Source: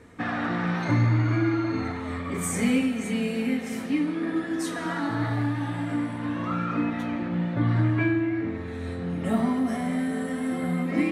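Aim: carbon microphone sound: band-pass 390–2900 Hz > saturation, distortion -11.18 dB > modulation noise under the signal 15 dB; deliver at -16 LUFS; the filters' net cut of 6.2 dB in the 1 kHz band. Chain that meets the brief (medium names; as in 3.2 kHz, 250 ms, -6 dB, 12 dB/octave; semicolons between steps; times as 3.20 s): band-pass 390–2900 Hz; peaking EQ 1 kHz -8.5 dB; saturation -32.5 dBFS; modulation noise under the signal 15 dB; trim +21.5 dB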